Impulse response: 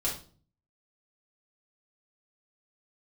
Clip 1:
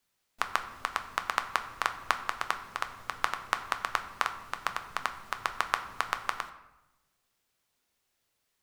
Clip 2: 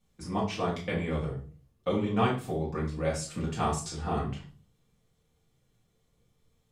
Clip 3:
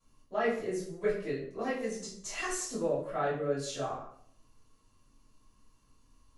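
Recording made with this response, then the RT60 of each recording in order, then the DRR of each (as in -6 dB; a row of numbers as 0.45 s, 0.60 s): 2; 0.95 s, 0.40 s, 0.60 s; 7.0 dB, -6.0 dB, -11.5 dB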